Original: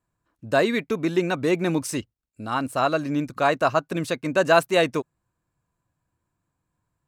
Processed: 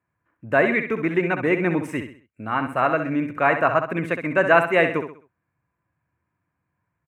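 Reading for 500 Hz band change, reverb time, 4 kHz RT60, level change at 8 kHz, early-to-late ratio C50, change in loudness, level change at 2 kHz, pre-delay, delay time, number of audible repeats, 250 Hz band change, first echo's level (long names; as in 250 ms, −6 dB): +1.0 dB, no reverb audible, no reverb audible, below −10 dB, no reverb audible, +2.0 dB, +5.5 dB, no reverb audible, 65 ms, 4, +1.0 dB, −8.5 dB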